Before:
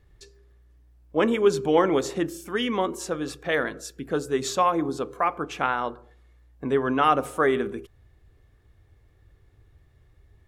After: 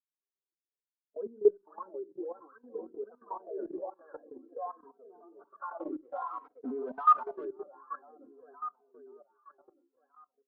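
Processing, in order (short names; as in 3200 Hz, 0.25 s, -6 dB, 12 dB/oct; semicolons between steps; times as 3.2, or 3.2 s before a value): per-bin expansion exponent 1.5; feedback echo 0.519 s, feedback 56%, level -4.5 dB; FFT band-pass 190–1700 Hz; 5.8–7.45 sample leveller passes 3; reverb, pre-delay 4 ms, DRR 14.5 dB; in parallel at +2 dB: compressor 5:1, threshold -27 dBFS, peak gain reduction 13 dB; on the sum: wah 1.3 Hz 320–1200 Hz, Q 10; 3.23–4.29 band shelf 550 Hz +9 dB; level quantiser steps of 17 dB; endless flanger 3 ms -0.53 Hz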